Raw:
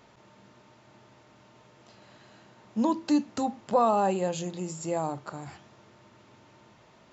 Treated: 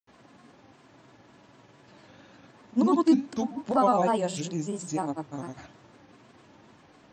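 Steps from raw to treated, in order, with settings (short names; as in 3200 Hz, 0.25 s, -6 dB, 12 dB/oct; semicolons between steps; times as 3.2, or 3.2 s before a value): grains 0.1 s, grains 20/s, pitch spread up and down by 3 st; small resonant body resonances 280/1700 Hz, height 7 dB; gain +1.5 dB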